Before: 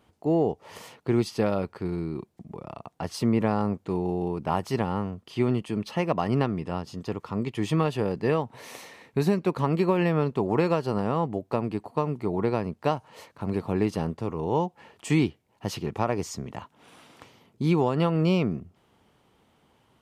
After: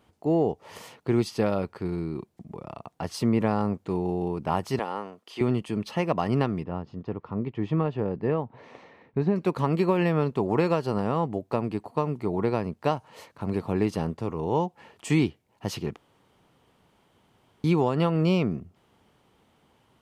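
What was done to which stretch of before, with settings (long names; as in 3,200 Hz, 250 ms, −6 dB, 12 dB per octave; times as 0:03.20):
0:04.79–0:05.41: high-pass filter 410 Hz
0:06.63–0:09.36: head-to-tape spacing loss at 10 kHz 37 dB
0:15.96–0:17.64: fill with room tone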